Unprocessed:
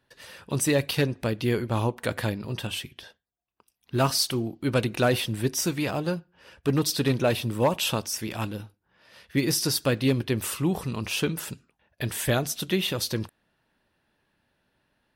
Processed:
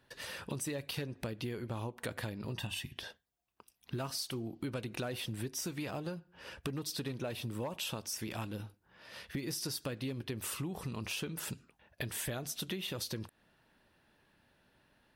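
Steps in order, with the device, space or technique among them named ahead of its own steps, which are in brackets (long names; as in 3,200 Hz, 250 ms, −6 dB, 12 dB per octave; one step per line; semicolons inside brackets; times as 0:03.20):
0:02.57–0:02.97: comb filter 1.1 ms, depth 59%
serial compression, peaks first (downward compressor 4 to 1, threshold −34 dBFS, peak gain reduction 14 dB; downward compressor 2 to 1, threshold −42 dBFS, peak gain reduction 7 dB)
level +2.5 dB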